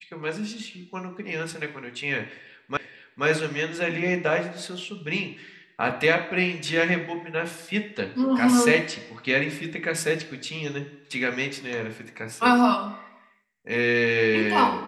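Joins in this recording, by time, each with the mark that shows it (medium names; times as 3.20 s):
2.77 s: repeat of the last 0.48 s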